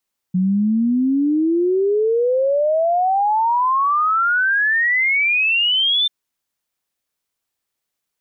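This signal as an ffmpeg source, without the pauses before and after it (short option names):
-f lavfi -i "aevalsrc='0.2*clip(min(t,5.74-t)/0.01,0,1)*sin(2*PI*180*5.74/log(3600/180)*(exp(log(3600/180)*t/5.74)-1))':d=5.74:s=44100"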